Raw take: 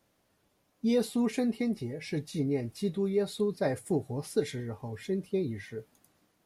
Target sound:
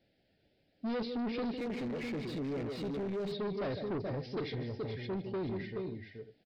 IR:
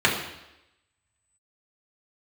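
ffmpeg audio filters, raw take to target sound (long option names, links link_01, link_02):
-filter_complex "[0:a]asuperstop=centerf=1100:order=4:qfactor=1.2,aecho=1:1:153|428|513:0.237|0.447|0.141,asoftclip=type=tanh:threshold=-32.5dB,aresample=11025,aresample=44100,asplit=3[link_01][link_02][link_03];[link_01]afade=type=out:start_time=1.57:duration=0.02[link_04];[link_02]asplit=2[link_05][link_06];[link_06]highpass=frequency=720:poles=1,volume=25dB,asoftclip=type=tanh:threshold=-32dB[link_07];[link_05][link_07]amix=inputs=2:normalize=0,lowpass=frequency=1500:poles=1,volume=-6dB,afade=type=in:start_time=1.57:duration=0.02,afade=type=out:start_time=3.31:duration=0.02[link_08];[link_03]afade=type=in:start_time=3.31:duration=0.02[link_09];[link_04][link_08][link_09]amix=inputs=3:normalize=0"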